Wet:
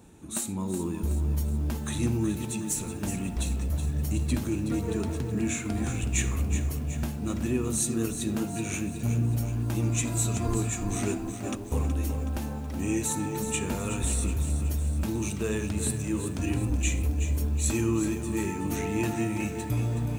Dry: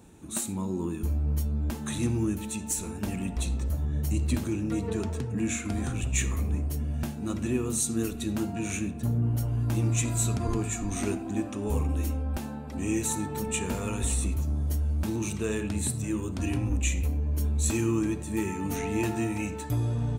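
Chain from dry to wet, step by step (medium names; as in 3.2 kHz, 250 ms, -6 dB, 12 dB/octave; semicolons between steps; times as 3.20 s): 11.28–11.72 s: compressor with a negative ratio -36 dBFS, ratio -0.5; bit-crushed delay 372 ms, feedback 55%, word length 8-bit, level -9 dB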